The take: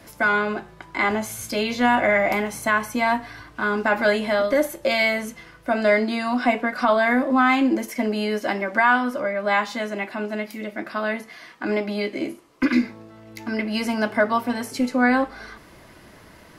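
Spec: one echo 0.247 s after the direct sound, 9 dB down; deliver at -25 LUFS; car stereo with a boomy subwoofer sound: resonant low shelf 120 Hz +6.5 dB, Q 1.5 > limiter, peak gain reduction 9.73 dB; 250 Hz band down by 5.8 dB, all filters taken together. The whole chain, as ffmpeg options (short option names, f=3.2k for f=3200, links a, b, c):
-af "lowshelf=f=120:t=q:w=1.5:g=6.5,equalizer=f=250:t=o:g=-5,aecho=1:1:247:0.355,volume=2dB,alimiter=limit=-15dB:level=0:latency=1"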